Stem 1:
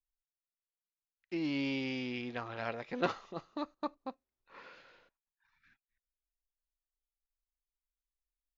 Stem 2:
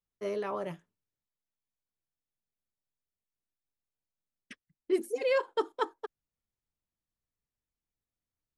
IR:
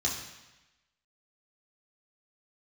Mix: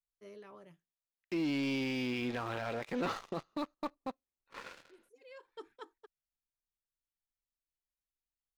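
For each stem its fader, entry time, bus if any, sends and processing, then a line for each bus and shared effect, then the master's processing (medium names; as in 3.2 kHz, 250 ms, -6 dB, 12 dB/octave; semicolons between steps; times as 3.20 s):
-2.5 dB, 0.00 s, no send, waveshaping leveller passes 3
-14.0 dB, 0.00 s, no send, peaking EQ 740 Hz -7 dB 1.8 oct; auto duck -17 dB, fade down 0.75 s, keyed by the first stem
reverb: none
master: peak limiter -28 dBFS, peak gain reduction 10 dB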